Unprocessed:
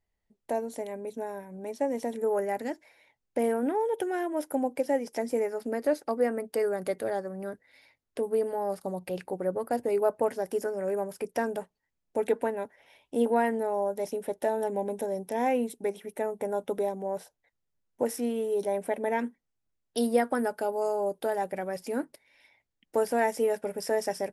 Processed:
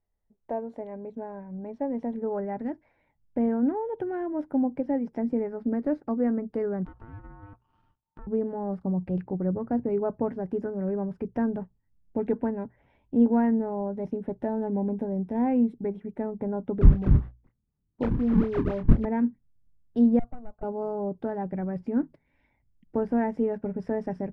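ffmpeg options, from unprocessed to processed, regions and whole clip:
ffmpeg -i in.wav -filter_complex "[0:a]asettb=1/sr,asplit=3[link_01][link_02][link_03];[link_01]atrim=end=6.854[link_04];[link_02]atrim=start=6.85:end=8.27,asetpts=PTS-STARTPTS,afade=type=in:duration=0.004:curve=qsin,afade=type=out:start_time=1.416:duration=0.004:curve=qsin,acompressor=threshold=-39dB:ratio=8:attack=3.2:release=140:knee=1:detection=peak,aeval=exprs='max(val(0),0)':channel_layout=same,aeval=exprs='val(0)*sin(2*PI*900*n/s)':channel_layout=same[link_05];[link_03]atrim=start=8.266[link_06];[link_04][link_05]acrossfade=duration=0.004:curve1=hsin:curve2=qsin[link_07];[link_07][link_06]acrossfade=duration=0.004:curve1=qsin:curve2=hsin,asettb=1/sr,asplit=3[link_08][link_09][link_10];[link_08]atrim=end=16.814[link_11];[link_09]atrim=start=16.81:end=19.05,asetpts=PTS-STARTPTS,afade=type=in:duration=0.004:curve=qsin,afade=type=out:start_time=2.236:duration=0.004:curve=qsin,highpass=190,acrusher=samples=39:mix=1:aa=0.000001:lfo=1:lforange=62.4:lforate=4,asplit=2[link_12][link_13];[link_13]adelay=27,volume=-7dB[link_14];[link_12][link_14]amix=inputs=2:normalize=0,atrim=end_sample=98784[link_15];[link_10]atrim=start=19.046[link_16];[link_11][link_15]acrossfade=duration=0.004:curve1=hsin:curve2=qsin[link_17];[link_17][link_16]acrossfade=duration=0.004:curve1=qsin:curve2=hsin,asettb=1/sr,asplit=3[link_18][link_19][link_20];[link_18]atrim=end=20.194[link_21];[link_19]atrim=start=20.19:end=20.63,asetpts=PTS-STARTPTS,afade=type=in:duration=0.004:curve=qsin,afade=type=out:start_time=0.436:duration=0.004:curve=qsin,asplit=3[link_22][link_23][link_24];[link_22]bandpass=frequency=730:width_type=q:width=8,volume=0dB[link_25];[link_23]bandpass=frequency=1090:width_type=q:width=8,volume=-6dB[link_26];[link_24]bandpass=frequency=2440:width_type=q:width=8,volume=-9dB[link_27];[link_25][link_26][link_27]amix=inputs=3:normalize=0,aeval=exprs='(tanh(70.8*val(0)+0.45)-tanh(0.45))/70.8':channel_layout=same,adynamicsmooth=sensitivity=5.5:basefreq=1900[link_28];[link_20]atrim=start=20.626[link_29];[link_21][link_28]acrossfade=duration=0.004:curve1=hsin:curve2=qsin[link_30];[link_30][link_29]acrossfade=duration=0.004:curve1=qsin:curve2=hsin,lowpass=1200,bandreject=frequency=60:width_type=h:width=6,bandreject=frequency=120:width_type=h:width=6,asubboost=boost=10:cutoff=170" out.wav

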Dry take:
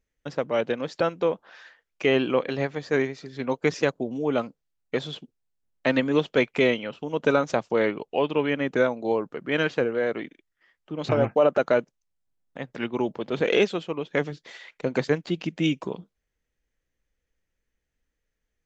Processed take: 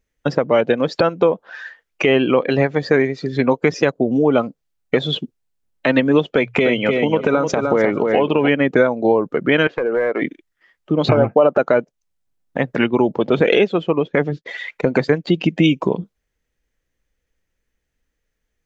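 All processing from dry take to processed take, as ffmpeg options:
ffmpeg -i in.wav -filter_complex "[0:a]asettb=1/sr,asplit=3[link_01][link_02][link_03];[link_01]atrim=end=6.274[link_04];[link_02]atrim=start=6.27:end=8.48,asetpts=PTS-STARTPTS,afade=type=in:duration=0.004:curve=qsin,afade=type=out:start_time=2.206:duration=0.004:curve=qsin,bandreject=frequency=60:width_type=h:width=6,bandreject=frequency=120:width_type=h:width=6,bandreject=frequency=180:width_type=h:width=6,acompressor=threshold=-22dB:ratio=4:attack=3.2:release=140:knee=1:detection=peak,aecho=1:1:303|606|909:0.473|0.104|0.0229,atrim=end_sample=97461[link_05];[link_03]atrim=start=8.476[link_06];[link_04][link_05]acrossfade=duration=0.004:curve1=hsin:curve2=qsin[link_07];[link_07][link_06]acrossfade=duration=0.004:curve1=qsin:curve2=hsin,asettb=1/sr,asplit=3[link_08][link_09][link_10];[link_08]atrim=end=9.674[link_11];[link_09]atrim=start=9.67:end=10.22,asetpts=PTS-STARTPTS,afade=type=in:duration=0.004:curve=qsin,afade=type=out:start_time=0.546:duration=0.004:curve=qsin,bass=frequency=250:gain=-13,treble=frequency=4000:gain=-14,acompressor=threshold=-33dB:ratio=2.5:attack=3.2:release=140:knee=1:detection=peak,aeval=exprs='clip(val(0),-1,0.0335)':channel_layout=same[link_12];[link_10]atrim=start=10.216[link_13];[link_11][link_12]acrossfade=duration=0.004:curve1=hsin:curve2=qsin[link_14];[link_14][link_13]acrossfade=duration=0.004:curve1=qsin:curve2=hsin,asettb=1/sr,asplit=3[link_15][link_16][link_17];[link_15]atrim=end=13.594[link_18];[link_16]atrim=start=13.59:end=14.58,asetpts=PTS-STARTPTS,afade=type=in:duration=0.004:curve=qsin,afade=type=out:start_time=0.986:duration=0.004:curve=qsin,agate=range=-33dB:threshold=-49dB:ratio=3:release=100:detection=peak,lowpass=frequency=3400:poles=1[link_19];[link_17]atrim=start=14.576[link_20];[link_18][link_19]acrossfade=duration=0.004:curve1=hsin:curve2=qsin[link_21];[link_21][link_20]acrossfade=duration=0.004:curve1=qsin:curve2=hsin,acompressor=threshold=-31dB:ratio=3,afftdn=noise_reduction=12:noise_floor=-44,alimiter=level_in=18.5dB:limit=-1dB:release=50:level=0:latency=1,volume=-1dB" out.wav

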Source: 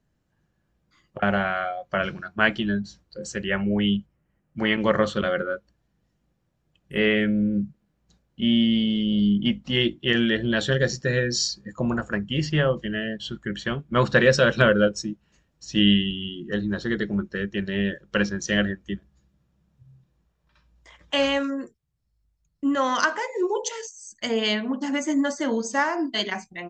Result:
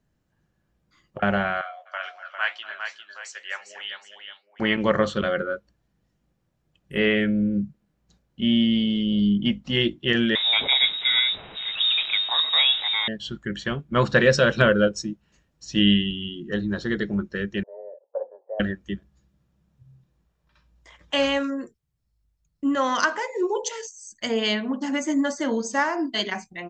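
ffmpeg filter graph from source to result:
ffmpeg -i in.wav -filter_complex "[0:a]asettb=1/sr,asplit=3[link_01][link_02][link_03];[link_01]atrim=end=1.614[link_04];[link_02]atrim=start=1.61:end=4.6,asetpts=PTS-STARTPTS,afade=type=in:duration=0.004:curve=qsin,afade=type=out:start_time=2.986:duration=0.004:curve=qsin,highpass=frequency=780:width=0.5412,highpass=frequency=780:width=1.3066,flanger=delay=6.6:depth=8.4:regen=72:speed=2:shape=triangular,aecho=1:1:245|254|401|767:0.106|0.133|0.447|0.188,atrim=end_sample=131859[link_05];[link_03]atrim=start=4.596[link_06];[link_04][link_05]acrossfade=duration=0.004:curve1=hsin:curve2=qsin[link_07];[link_07][link_06]acrossfade=duration=0.004:curve1=qsin:curve2=hsin,asettb=1/sr,asplit=3[link_08][link_09][link_10];[link_08]atrim=end=10.354[link_11];[link_09]atrim=start=10.35:end=13.08,asetpts=PTS-STARTPTS,afade=type=in:duration=0.004:curve=qsin,afade=type=out:start_time=2.726:duration=0.004:curve=qsin,aeval=exprs='val(0)+0.5*0.0473*sgn(val(0))':channel_layout=same,lowpass=frequency=3300:width_type=q:width=0.5098,lowpass=frequency=3300:width_type=q:width=0.6013,lowpass=frequency=3300:width_type=q:width=0.9,lowpass=frequency=3300:width_type=q:width=2.563,afreqshift=-3900[link_12];[link_10]atrim=start=13.076[link_13];[link_11][link_12]acrossfade=duration=0.004:curve1=hsin:curve2=qsin[link_14];[link_14][link_13]acrossfade=duration=0.004:curve1=qsin:curve2=hsin,asettb=1/sr,asplit=3[link_15][link_16][link_17];[link_15]atrim=end=17.634[link_18];[link_16]atrim=start=17.63:end=18.6,asetpts=PTS-STARTPTS,afade=type=in:duration=0.004:curve=qsin,afade=type=out:start_time=0.966:duration=0.004:curve=qsin,asuperpass=centerf=640:order=8:qfactor=1.5,afreqshift=24[link_19];[link_17]atrim=start=18.596[link_20];[link_18][link_19]acrossfade=duration=0.004:curve1=hsin:curve2=qsin[link_21];[link_21][link_20]acrossfade=duration=0.004:curve1=qsin:curve2=hsin" out.wav

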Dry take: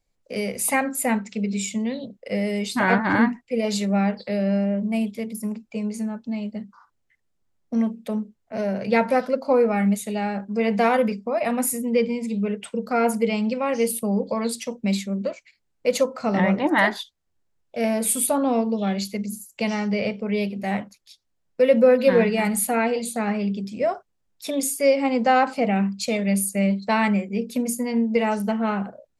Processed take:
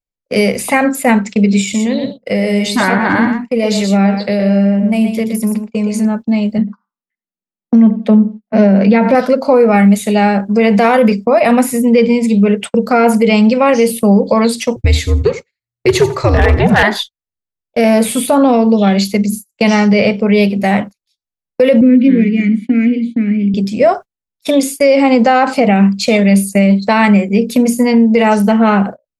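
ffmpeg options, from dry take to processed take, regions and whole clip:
ffmpeg -i in.wav -filter_complex "[0:a]asettb=1/sr,asplit=3[link_01][link_02][link_03];[link_01]atrim=end=1.614[link_04];[link_02]atrim=start=1.61:end=6.05,asetpts=PTS-STARTPTS,afade=type=in:duration=0.004:curve=qsin,afade=type=out:start_time=4.436:duration=0.004:curve=qsin,acompressor=threshold=-27dB:ratio=2.5:attack=3.2:release=140:knee=1:detection=peak,aecho=1:1:121:0.422,atrim=end_sample=195804[link_05];[link_03]atrim=start=6.046[link_06];[link_04][link_05]acrossfade=duration=0.004:curve1=hsin:curve2=qsin[link_07];[link_07][link_06]acrossfade=duration=0.004:curve1=qsin:curve2=hsin,asettb=1/sr,asplit=3[link_08][link_09][link_10];[link_08]atrim=end=6.584[link_11];[link_09]atrim=start=6.58:end=9.15,asetpts=PTS-STARTPTS,afade=type=in:duration=0.004:curve=qsin,afade=type=out:start_time=2.566:duration=0.004:curve=qsin,lowpass=3900,lowshelf=frequency=140:width_type=q:width=3:gain=-12.5,asplit=2[link_12][link_13];[link_13]adelay=91,lowpass=frequency=1200:poles=1,volume=-18dB,asplit=2[link_14][link_15];[link_15]adelay=91,lowpass=frequency=1200:poles=1,volume=0.27[link_16];[link_12][link_14][link_16]amix=inputs=3:normalize=0,atrim=end_sample=113337[link_17];[link_10]atrim=start=9.146[link_18];[link_11][link_17]acrossfade=duration=0.004:curve1=hsin:curve2=qsin[link_19];[link_19][link_18]acrossfade=duration=0.004:curve1=qsin:curve2=hsin,asettb=1/sr,asplit=3[link_20][link_21][link_22];[link_20]atrim=end=14.764[link_23];[link_21]atrim=start=14.76:end=16.83,asetpts=PTS-STARTPTS,afade=type=in:duration=0.004:curve=qsin,afade=type=out:start_time=2.066:duration=0.004:curve=qsin,afreqshift=-120,aeval=exprs='0.251*(abs(mod(val(0)/0.251+3,4)-2)-1)':channel_layout=same,aecho=1:1:86|172:0.15|0.0224,atrim=end_sample=91287[link_24];[link_22]atrim=start=16.826[link_25];[link_23][link_24]acrossfade=duration=0.004:curve1=hsin:curve2=qsin[link_26];[link_26][link_25]acrossfade=duration=0.004:curve1=qsin:curve2=hsin,asettb=1/sr,asplit=3[link_27][link_28][link_29];[link_27]atrim=end=21.814[link_30];[link_28]atrim=start=21.81:end=23.54,asetpts=PTS-STARTPTS,afade=type=in:duration=0.004:curve=qsin,afade=type=out:start_time=1.726:duration=0.004:curve=qsin,asplit=3[link_31][link_32][link_33];[link_31]bandpass=frequency=270:width_type=q:width=8,volume=0dB[link_34];[link_32]bandpass=frequency=2290:width_type=q:width=8,volume=-6dB[link_35];[link_33]bandpass=frequency=3010:width_type=q:width=8,volume=-9dB[link_36];[link_34][link_35][link_36]amix=inputs=3:normalize=0,equalizer=frequency=180:width_type=o:width=2.6:gain=10,adynamicsmooth=sensitivity=2.5:basefreq=4000[link_37];[link_29]atrim=start=23.536[link_38];[link_30][link_37]acrossfade=duration=0.004:curve1=hsin:curve2=qsin[link_39];[link_39][link_38]acrossfade=duration=0.004:curve1=qsin:curve2=hsin,acrossover=split=4300[link_40][link_41];[link_41]acompressor=threshold=-37dB:ratio=4:attack=1:release=60[link_42];[link_40][link_42]amix=inputs=2:normalize=0,agate=range=-31dB:threshold=-36dB:ratio=16:detection=peak,alimiter=level_in=16dB:limit=-1dB:release=50:level=0:latency=1,volume=-1dB" out.wav

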